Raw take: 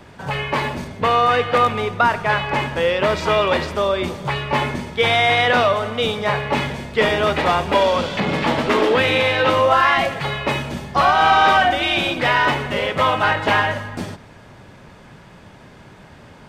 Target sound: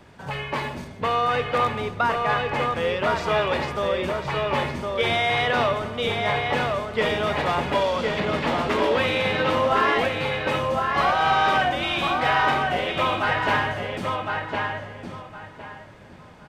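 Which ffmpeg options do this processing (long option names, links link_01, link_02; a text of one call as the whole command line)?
ffmpeg -i in.wav -filter_complex "[0:a]asplit=2[link_01][link_02];[link_02]adelay=1061,lowpass=frequency=3300:poles=1,volume=-3dB,asplit=2[link_03][link_04];[link_04]adelay=1061,lowpass=frequency=3300:poles=1,volume=0.24,asplit=2[link_05][link_06];[link_06]adelay=1061,lowpass=frequency=3300:poles=1,volume=0.24[link_07];[link_01][link_03][link_05][link_07]amix=inputs=4:normalize=0,volume=-6.5dB" out.wav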